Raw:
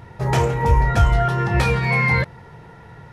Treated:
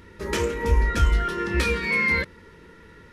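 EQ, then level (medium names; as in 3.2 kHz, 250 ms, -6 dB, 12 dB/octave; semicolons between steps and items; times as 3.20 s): static phaser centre 310 Hz, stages 4; 0.0 dB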